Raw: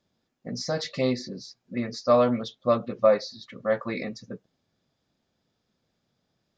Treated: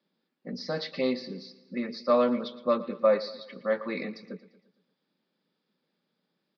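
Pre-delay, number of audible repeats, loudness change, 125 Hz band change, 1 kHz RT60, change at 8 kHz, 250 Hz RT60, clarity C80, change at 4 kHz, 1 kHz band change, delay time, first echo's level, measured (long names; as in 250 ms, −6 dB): no reverb audible, 4, −3.0 dB, −10.0 dB, no reverb audible, can't be measured, no reverb audible, no reverb audible, −3.0 dB, −3.0 dB, 115 ms, −17.0 dB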